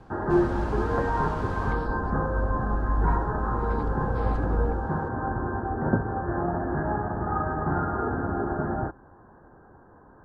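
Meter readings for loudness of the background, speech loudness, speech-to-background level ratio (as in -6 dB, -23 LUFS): -28.0 LUFS, -33.0 LUFS, -5.0 dB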